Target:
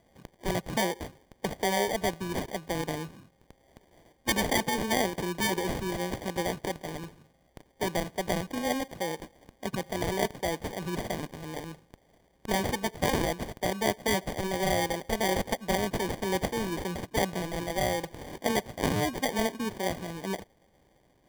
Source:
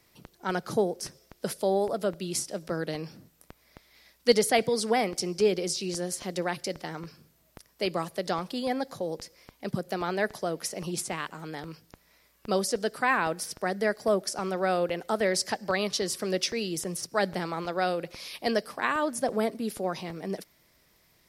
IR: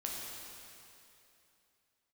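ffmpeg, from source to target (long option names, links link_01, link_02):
-af "acrusher=samples=33:mix=1:aa=0.000001,afftfilt=real='re*lt(hypot(re,im),0.447)':imag='im*lt(hypot(re,im),0.447)':win_size=1024:overlap=0.75"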